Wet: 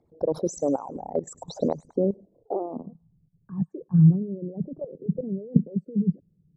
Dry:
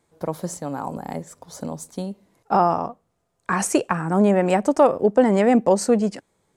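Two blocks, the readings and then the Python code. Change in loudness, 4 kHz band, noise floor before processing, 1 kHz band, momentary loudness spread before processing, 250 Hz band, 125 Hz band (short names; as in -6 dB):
-6.0 dB, under -10 dB, -71 dBFS, -16.5 dB, 16 LU, -3.5 dB, +5.5 dB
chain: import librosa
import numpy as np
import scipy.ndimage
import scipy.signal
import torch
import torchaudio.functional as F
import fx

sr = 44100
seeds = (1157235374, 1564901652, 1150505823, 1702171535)

y = fx.envelope_sharpen(x, sr, power=3.0)
y = fx.dynamic_eq(y, sr, hz=840.0, q=1.3, threshold_db=-31.0, ratio=4.0, max_db=-7)
y = fx.level_steps(y, sr, step_db=15)
y = fx.filter_sweep_lowpass(y, sr, from_hz=5000.0, to_hz=160.0, start_s=1.32, end_s=2.95, q=3.9)
y = fx.echo_wet_highpass(y, sr, ms=103, feedback_pct=35, hz=2400.0, wet_db=-15.0)
y = y * librosa.db_to_amplitude(7.5)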